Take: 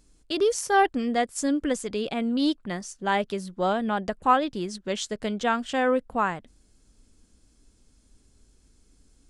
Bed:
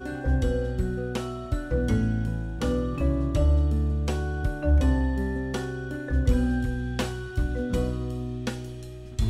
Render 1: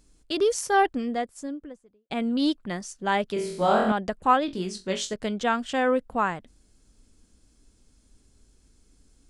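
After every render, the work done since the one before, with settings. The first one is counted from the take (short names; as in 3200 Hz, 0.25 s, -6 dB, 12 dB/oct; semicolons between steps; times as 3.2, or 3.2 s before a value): 0.61–2.1 studio fade out; 3.34–3.92 flutter echo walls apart 4 m, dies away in 0.79 s; 4.46–5.14 flutter echo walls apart 3.7 m, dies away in 0.22 s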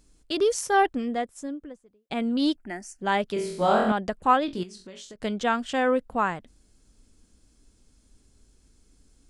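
0.63–1.63 notch 4600 Hz; 2.56–3.01 fixed phaser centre 750 Hz, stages 8; 4.63–5.22 compressor 8:1, threshold -40 dBFS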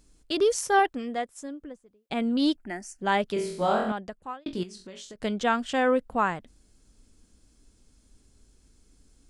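0.79–1.6 low shelf 340 Hz -7.5 dB; 3.38–4.46 fade out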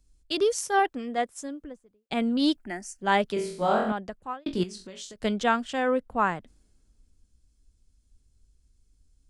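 vocal rider within 4 dB 0.5 s; three-band expander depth 40%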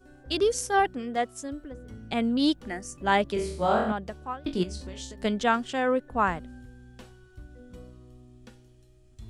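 add bed -20 dB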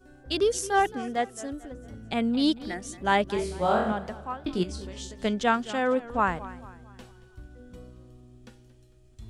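warbling echo 0.223 s, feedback 41%, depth 133 cents, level -17 dB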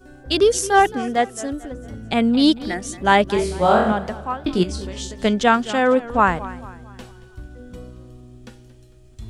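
gain +8.5 dB; limiter -2 dBFS, peak gain reduction 1.5 dB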